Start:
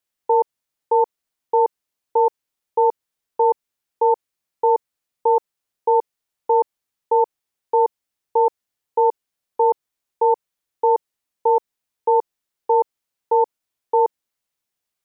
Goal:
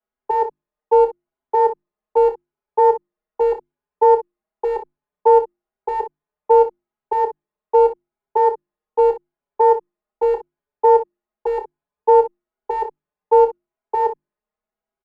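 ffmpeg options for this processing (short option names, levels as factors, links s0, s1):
-filter_complex "[0:a]lowpass=1000,equalizer=f=170:w=0.69:g=-4.5,bandreject=f=50:t=h:w=6,bandreject=f=100:t=h:w=6,bandreject=f=150:t=h:w=6,bandreject=f=200:t=h:w=6,bandreject=f=250:t=h:w=6,bandreject=f=300:t=h:w=6,bandreject=f=350:t=h:w=6,aecho=1:1:4.8:0.93,acrossover=split=400|570[s0][s1][s2];[s1]volume=11.2,asoftclip=hard,volume=0.0891[s3];[s0][s3][s2]amix=inputs=3:normalize=0,aecho=1:1:28|61:0.376|0.2,alimiter=level_in=2.82:limit=0.891:release=50:level=0:latency=1,asplit=2[s4][s5];[s5]adelay=5.8,afreqshift=0.88[s6];[s4][s6]amix=inputs=2:normalize=1,volume=0.708"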